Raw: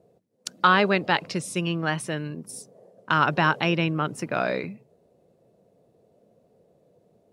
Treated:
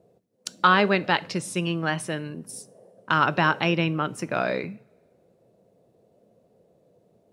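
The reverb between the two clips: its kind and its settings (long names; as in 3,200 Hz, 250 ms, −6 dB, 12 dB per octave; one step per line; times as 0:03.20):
coupled-rooms reverb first 0.39 s, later 1.7 s, from −22 dB, DRR 16.5 dB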